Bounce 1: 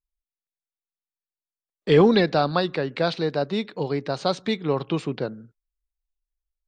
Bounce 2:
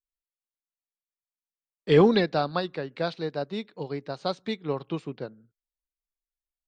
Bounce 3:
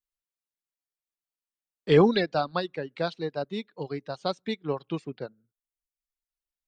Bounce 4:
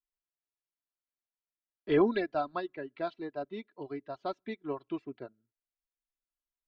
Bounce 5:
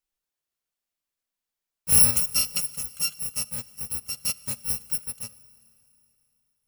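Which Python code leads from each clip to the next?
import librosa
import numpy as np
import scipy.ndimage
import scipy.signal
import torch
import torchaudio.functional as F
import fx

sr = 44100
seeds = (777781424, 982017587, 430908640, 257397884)

y1 = fx.upward_expand(x, sr, threshold_db=-37.0, expansion=1.5)
y1 = y1 * librosa.db_to_amplitude(-1.5)
y2 = fx.dereverb_blind(y1, sr, rt60_s=0.82)
y3 = scipy.signal.sosfilt(scipy.signal.butter(2, 2400.0, 'lowpass', fs=sr, output='sos'), y2)
y3 = y3 + 0.68 * np.pad(y3, (int(3.0 * sr / 1000.0), 0))[:len(y3)]
y3 = y3 * librosa.db_to_amplitude(-7.0)
y4 = fx.bit_reversed(y3, sr, seeds[0], block=128)
y4 = fx.rev_schroeder(y4, sr, rt60_s=3.0, comb_ms=28, drr_db=18.5)
y4 = y4 * librosa.db_to_amplitude(7.5)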